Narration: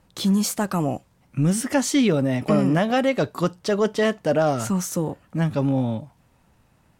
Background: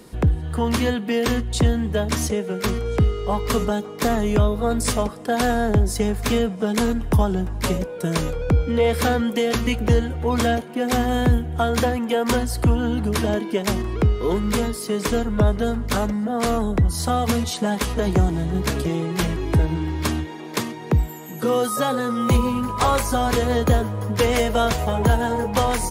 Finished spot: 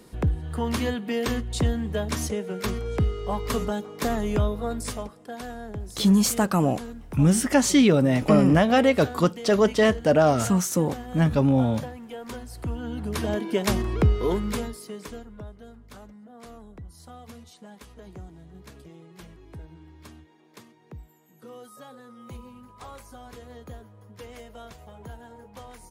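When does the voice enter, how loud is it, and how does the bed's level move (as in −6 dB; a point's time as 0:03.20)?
5.80 s, +1.5 dB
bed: 0:04.47 −5.5 dB
0:05.44 −17 dB
0:12.39 −17 dB
0:13.58 −1.5 dB
0:14.22 −1.5 dB
0:15.49 −24 dB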